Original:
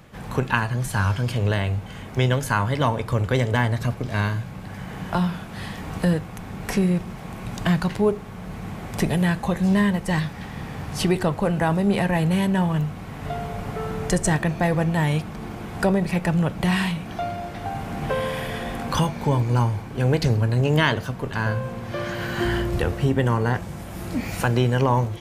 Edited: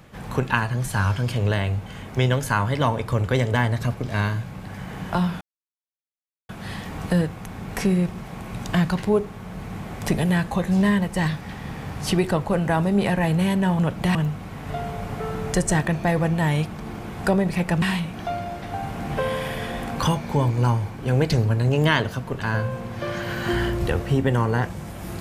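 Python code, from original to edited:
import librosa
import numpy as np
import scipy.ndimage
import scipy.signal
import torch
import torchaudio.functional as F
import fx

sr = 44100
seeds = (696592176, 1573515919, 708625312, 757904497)

y = fx.edit(x, sr, fx.insert_silence(at_s=5.41, length_s=1.08),
    fx.move(start_s=16.38, length_s=0.36, to_s=12.71), tone=tone)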